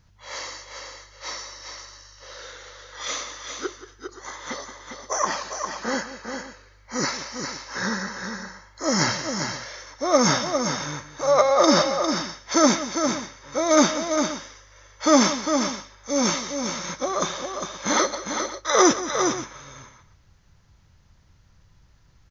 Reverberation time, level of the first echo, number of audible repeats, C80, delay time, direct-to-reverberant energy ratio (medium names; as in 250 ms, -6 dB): no reverb, -14.5 dB, 3, no reverb, 178 ms, no reverb